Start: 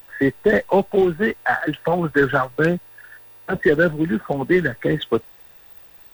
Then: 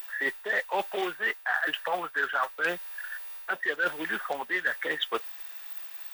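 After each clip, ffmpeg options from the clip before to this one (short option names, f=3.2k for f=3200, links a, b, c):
-af "highpass=1.1k,areverse,acompressor=threshold=-31dB:ratio=6,areverse,volume=5.5dB"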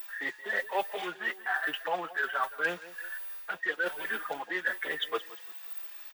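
-filter_complex "[0:a]aecho=1:1:174|348|522|696:0.126|0.0541|0.0233|0.01,asplit=2[a][b];[b]adelay=4.6,afreqshift=1.2[c];[a][c]amix=inputs=2:normalize=1"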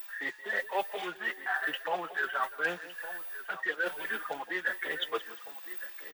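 -af "aecho=1:1:1160:0.188,volume=-1dB"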